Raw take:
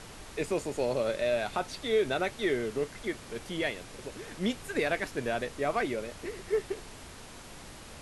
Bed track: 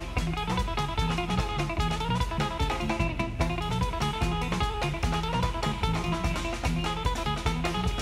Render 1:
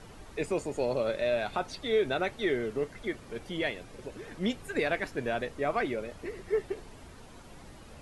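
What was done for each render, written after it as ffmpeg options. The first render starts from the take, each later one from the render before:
-af "afftdn=nr=9:nf=-48"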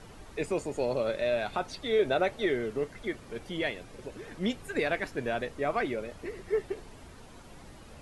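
-filter_complex "[0:a]asettb=1/sr,asplit=3[a][b][c];[a]atrim=end=1.994[d];[b]atrim=start=1.99:end=2.46,asetpts=PTS-STARTPTS,afade=t=in:d=0.004:c=qsin,afade=t=out:st=0.466:d=0.004:c=qsin,equalizer=f=580:w=1.8:g=6[e];[c]atrim=start=2.456[f];[d][e]acrossfade=d=0.004:c1=hsin:c2=qsin[g];[g][f]acrossfade=d=0.004:c1=qsin:c2=hsin"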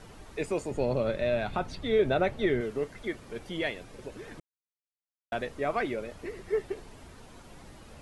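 -filter_complex "[0:a]asettb=1/sr,asplit=3[a][b][c];[a]atrim=end=0.714[d];[b]atrim=start=0.71:end=2.61,asetpts=PTS-STARTPTS,afade=t=in:d=0.004:c=qsin,afade=t=out:st=1.896:d=0.004:c=qsin,bass=f=250:g=9,treble=f=4k:g=-5[e];[c]atrim=start=2.606[f];[d][e]acrossfade=d=0.004:c1=hsin:c2=qsin[g];[g][f]acrossfade=d=0.004:c1=qsin:c2=hsin,asplit=3[h][i][j];[h]atrim=end=4.4,asetpts=PTS-STARTPTS,afade=t=out:st=4.396:d=0.004:c=hsin[k];[i]atrim=start=4.4:end=5.32,asetpts=PTS-STARTPTS,volume=0[l];[j]atrim=start=5.32,asetpts=PTS-STARTPTS,afade=t=in:d=0.004:c=hsin[m];[k][l][m]concat=n=3:v=0:a=1"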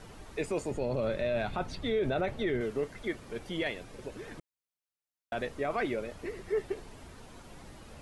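-af "alimiter=limit=-22.5dB:level=0:latency=1:release=11"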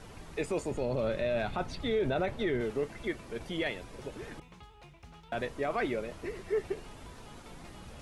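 -filter_complex "[1:a]volume=-25dB[a];[0:a][a]amix=inputs=2:normalize=0"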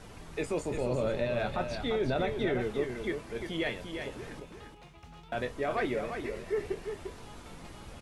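-filter_complex "[0:a]asplit=2[a][b];[b]adelay=24,volume=-10.5dB[c];[a][c]amix=inputs=2:normalize=0,aecho=1:1:348:0.447"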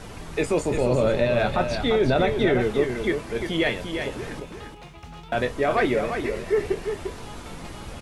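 -af "volume=9.5dB"

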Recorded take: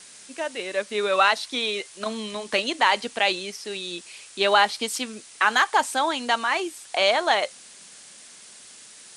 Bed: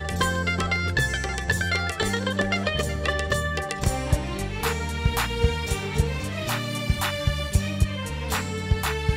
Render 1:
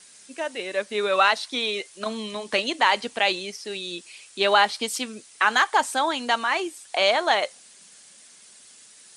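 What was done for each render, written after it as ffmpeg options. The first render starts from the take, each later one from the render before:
-af "afftdn=nr=6:nf=-47"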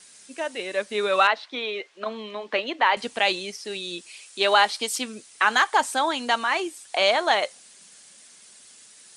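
-filter_complex "[0:a]asettb=1/sr,asplit=3[a][b][c];[a]atrim=end=1.274[d];[b]atrim=start=1.27:end=2.97,asetpts=PTS-STARTPTS,afade=t=in:d=0.004:c=qsin,afade=t=out:st=1.696:d=0.004:c=qsin,highpass=290,lowpass=2.7k[e];[c]atrim=start=2.966[f];[d][e]acrossfade=d=0.004:c1=hsin:c2=qsin[g];[g][f]acrossfade=d=0.004:c1=qsin:c2=hsin,asettb=1/sr,asplit=3[h][i][j];[h]atrim=end=4.094[k];[i]atrim=start=4.09:end=4.96,asetpts=PTS-STARTPTS,afade=t=in:d=0.004:c=qsin,afade=t=out:st=0.866:d=0.004:c=qsin,bass=f=250:g=-8,treble=f=4k:g=2[l];[j]atrim=start=4.956[m];[k][l]acrossfade=d=0.004:c1=hsin:c2=qsin[n];[n][m]acrossfade=d=0.004:c1=qsin:c2=hsin"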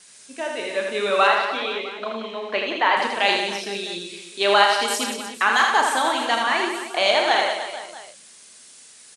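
-filter_complex "[0:a]asplit=2[a][b];[b]adelay=35,volume=-7.5dB[c];[a][c]amix=inputs=2:normalize=0,aecho=1:1:80|180|305|461.2|656.6:0.631|0.398|0.251|0.158|0.1"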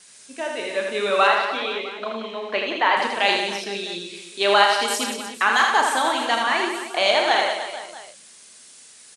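-filter_complex "[0:a]asettb=1/sr,asplit=3[a][b][c];[a]atrim=end=3.644[d];[b]atrim=start=3.64:end=4.15,asetpts=PTS-STARTPTS,afade=t=in:d=0.004:c=qsin,afade=t=out:st=0.506:d=0.004:c=qsin,acrossover=split=8100[e][f];[f]acompressor=threshold=-55dB:ratio=4:attack=1:release=60[g];[e][g]amix=inputs=2:normalize=0[h];[c]atrim=start=4.146[i];[d][h]acrossfade=d=0.004:c1=hsin:c2=qsin[j];[j][i]acrossfade=d=0.004:c1=qsin:c2=hsin"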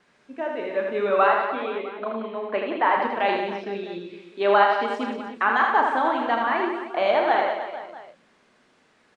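-af "lowpass=1.5k,equalizer=f=270:t=o:w=0.77:g=2.5"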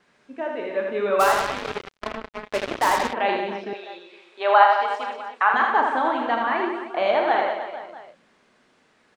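-filter_complex "[0:a]asplit=3[a][b][c];[a]afade=t=out:st=1.19:d=0.02[d];[b]acrusher=bits=3:mix=0:aa=0.5,afade=t=in:st=1.19:d=0.02,afade=t=out:st=3.12:d=0.02[e];[c]afade=t=in:st=3.12:d=0.02[f];[d][e][f]amix=inputs=3:normalize=0,asettb=1/sr,asplit=3[g][h][i];[g]atrim=end=3.734[j];[h]atrim=start=3.73:end=5.54,asetpts=PTS-STARTPTS,afade=t=in:d=0.004:c=qsin,afade=t=out:st=1.806:d=0.004:c=qsin,highpass=f=740:t=q:w=1.6[k];[i]atrim=start=5.536[l];[j][k]acrossfade=d=0.004:c1=hsin:c2=qsin[m];[m][l]acrossfade=d=0.004:c1=qsin:c2=hsin"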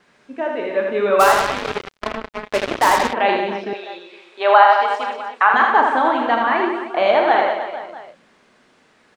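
-af "volume=5.5dB,alimiter=limit=-1dB:level=0:latency=1"

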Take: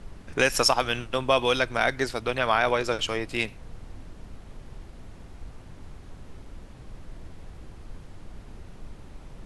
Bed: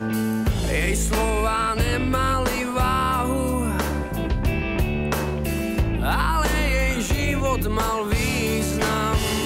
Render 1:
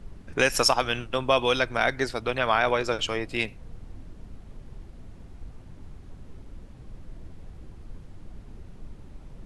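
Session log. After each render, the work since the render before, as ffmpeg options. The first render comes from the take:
-af "afftdn=nr=6:nf=-46"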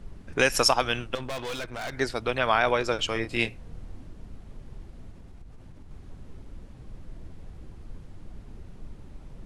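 -filter_complex "[0:a]asettb=1/sr,asplit=3[a][b][c];[a]atrim=end=1.154[d];[b]atrim=start=1.15:end=1.93,asetpts=PTS-STARTPTS,afade=t=in:d=0.004:c=qsin,afade=t=out:st=0.776:d=0.004:c=qsin,aeval=exprs='(tanh(35.5*val(0)+0.65)-tanh(0.65))/35.5':c=same[e];[c]atrim=start=1.926[f];[d][e]acrossfade=d=0.004:c1=hsin:c2=qsin[g];[g][f]acrossfade=d=0.004:c1=qsin:c2=hsin,asettb=1/sr,asplit=3[h][i][j];[h]atrim=end=3.134[k];[i]atrim=start=3.13:end=4.07,asetpts=PTS-STARTPTS,afade=t=in:d=0.004:c=qsin,afade=t=out:st=0.936:d=0.004:c=qsin,asplit=2[l][m];[m]adelay=26,volume=-6dB[n];[l][n]amix=inputs=2:normalize=0,atrim=end_sample=41454[o];[j]atrim=start=4.066[p];[k][o]acrossfade=d=0.004:c1=hsin:c2=qsin[q];[q][p]acrossfade=d=0.004:c1=qsin:c2=hsin,asettb=1/sr,asplit=3[r][s][t];[r]atrim=end=5.114[u];[s]atrim=start=5.11:end=5.91,asetpts=PTS-STARTPTS,afade=t=in:d=0.004:c=qsin,afade=t=out:st=0.796:d=0.004:c=qsin,acompressor=threshold=-41dB:ratio=6:attack=3.2:release=140:knee=1:detection=peak[v];[t]atrim=start=5.906[w];[u][v]acrossfade=d=0.004:c1=hsin:c2=qsin[x];[x][w]acrossfade=d=0.004:c1=qsin:c2=hsin"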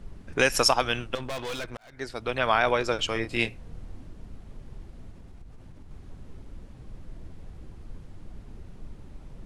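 -filter_complex "[0:a]asplit=2[a][b];[a]atrim=end=1.77,asetpts=PTS-STARTPTS,afade=t=out:st=1.766:d=0.004:c=hsin[c];[b]atrim=start=1.77,asetpts=PTS-STARTPTS,afade=t=in:d=0.67[d];[c][d]concat=n=2:v=0:a=1"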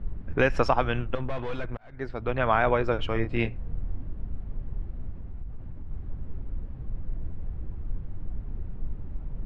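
-af "lowpass=1.9k,lowshelf=f=150:g=11"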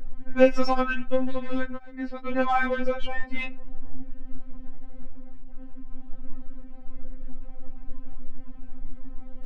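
-filter_complex "[0:a]asplit=2[a][b];[b]asoftclip=type=tanh:threshold=-24.5dB,volume=-5dB[c];[a][c]amix=inputs=2:normalize=0,afftfilt=real='re*3.46*eq(mod(b,12),0)':imag='im*3.46*eq(mod(b,12),0)':win_size=2048:overlap=0.75"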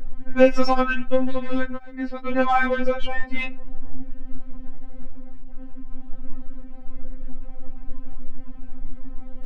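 -af "volume=4dB,alimiter=limit=-3dB:level=0:latency=1"

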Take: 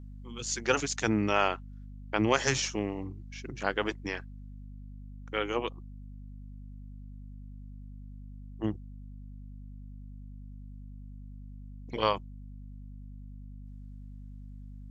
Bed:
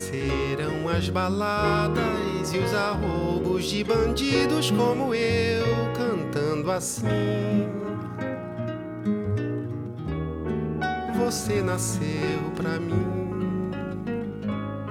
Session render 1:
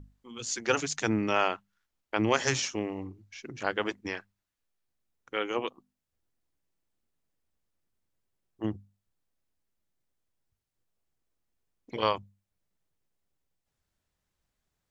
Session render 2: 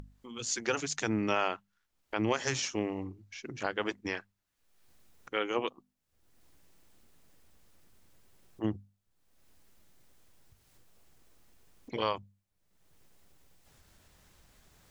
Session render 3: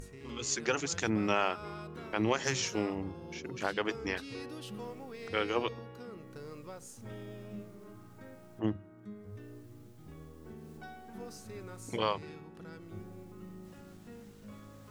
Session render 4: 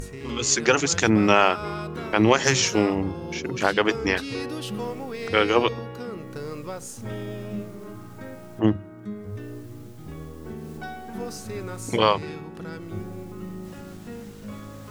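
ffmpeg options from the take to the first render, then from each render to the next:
-af "bandreject=f=50:t=h:w=6,bandreject=f=100:t=h:w=6,bandreject=f=150:t=h:w=6,bandreject=f=200:t=h:w=6,bandreject=f=250:t=h:w=6"
-af "acompressor=mode=upward:threshold=-44dB:ratio=2.5,alimiter=limit=-16dB:level=0:latency=1:release=315"
-filter_complex "[1:a]volume=-21dB[a];[0:a][a]amix=inputs=2:normalize=0"
-af "volume=12dB"

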